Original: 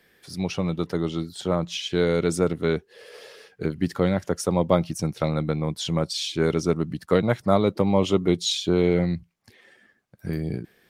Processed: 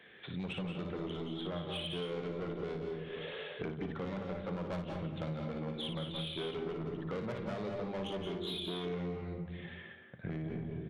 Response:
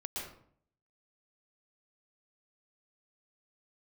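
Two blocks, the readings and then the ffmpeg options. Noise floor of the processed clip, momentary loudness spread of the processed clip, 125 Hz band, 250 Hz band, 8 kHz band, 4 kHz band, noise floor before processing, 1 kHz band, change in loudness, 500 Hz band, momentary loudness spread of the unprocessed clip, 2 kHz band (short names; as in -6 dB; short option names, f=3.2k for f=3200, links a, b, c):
-52 dBFS, 5 LU, -14.0 dB, -15.0 dB, under -25 dB, -11.0 dB, -62 dBFS, -14.5 dB, -15.0 dB, -15.5 dB, 10 LU, -11.5 dB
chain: -filter_complex "[0:a]acontrast=75,highshelf=f=3.1k:g=6,aresample=8000,aresample=44100,highpass=85,bandreject=f=50:t=h:w=6,bandreject=f=100:t=h:w=6,bandreject=f=150:t=h:w=6,bandreject=f=200:t=h:w=6,bandreject=f=250:t=h:w=6,bandreject=f=300:t=h:w=6,bandreject=f=350:t=h:w=6,asoftclip=type=tanh:threshold=-17dB,asplit=2[a][b];[b]adelay=225,lowpass=f=1.8k:p=1,volume=-12dB,asplit=2[c][d];[d]adelay=225,lowpass=f=1.8k:p=1,volume=0.18[e];[a][c][e]amix=inputs=3:normalize=0,asplit=2[f][g];[1:a]atrim=start_sample=2205,adelay=57[h];[g][h]afir=irnorm=-1:irlink=0,volume=-2.5dB[i];[f][i]amix=inputs=2:normalize=0,acompressor=threshold=-33dB:ratio=5,volume=-5dB"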